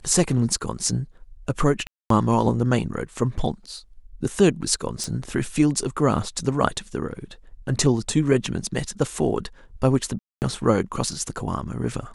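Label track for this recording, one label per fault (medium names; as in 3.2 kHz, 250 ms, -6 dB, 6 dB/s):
1.870000	2.100000	dropout 233 ms
5.040000	5.040000	pop
10.190000	10.420000	dropout 229 ms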